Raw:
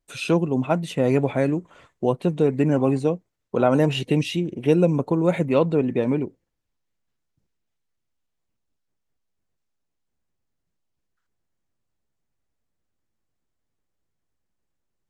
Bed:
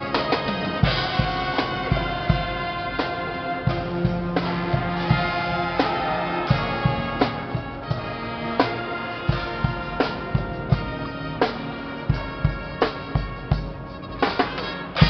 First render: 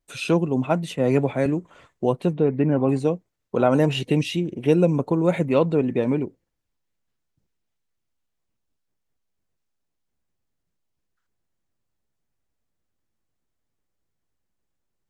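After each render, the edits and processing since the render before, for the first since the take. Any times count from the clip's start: 0.96–1.46 three-band expander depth 70%; 2.33–2.89 air absorption 310 m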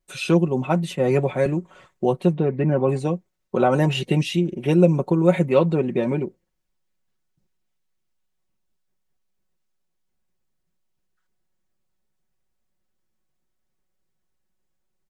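comb 5.4 ms, depth 61%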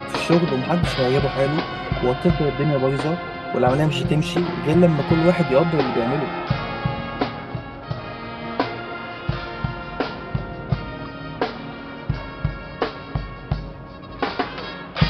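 add bed -2.5 dB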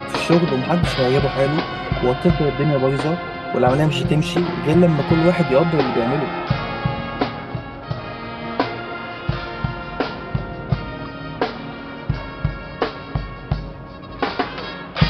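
gain +2 dB; limiter -3 dBFS, peak gain reduction 3 dB

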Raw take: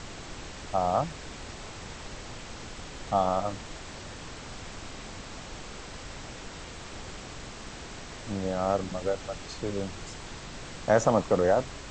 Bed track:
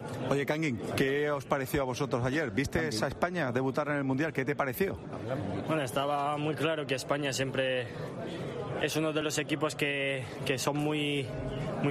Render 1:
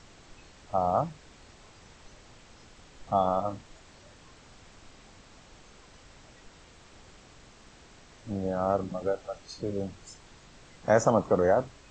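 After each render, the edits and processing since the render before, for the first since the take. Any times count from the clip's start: noise print and reduce 12 dB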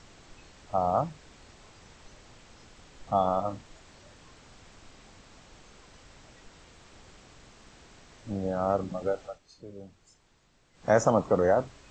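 9.24–10.88 dip -12.5 dB, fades 0.15 s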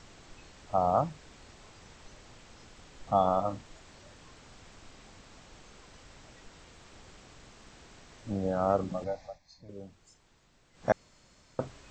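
9.04–9.69 fixed phaser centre 2000 Hz, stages 8; 10.92–11.59 room tone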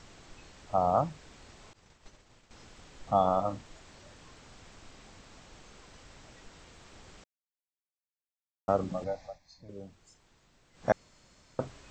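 1.73–2.51 expander -47 dBFS; 7.24–8.68 mute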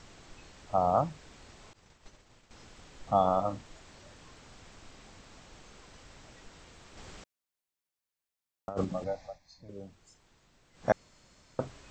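6.97–8.85 negative-ratio compressor -31 dBFS, ratio -0.5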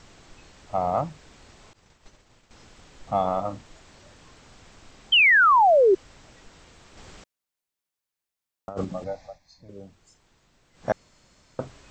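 in parallel at -11.5 dB: hard clip -24.5 dBFS, distortion -8 dB; 5.12–5.95 on the sum: painted sound fall 360–3200 Hz -16 dBFS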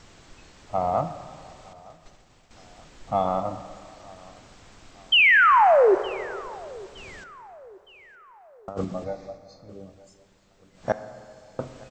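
feedback echo 0.915 s, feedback 50%, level -23.5 dB; plate-style reverb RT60 2.3 s, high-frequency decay 0.55×, DRR 10.5 dB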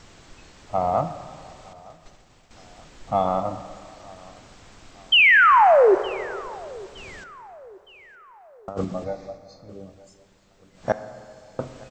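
gain +2 dB

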